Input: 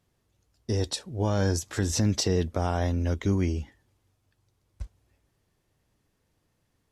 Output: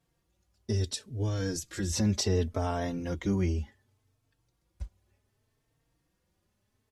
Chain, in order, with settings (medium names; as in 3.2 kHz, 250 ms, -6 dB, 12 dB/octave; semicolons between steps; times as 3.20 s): 0.72–1.92 s: peaking EQ 820 Hz -12 dB 1.2 oct; endless flanger 3.9 ms +0.68 Hz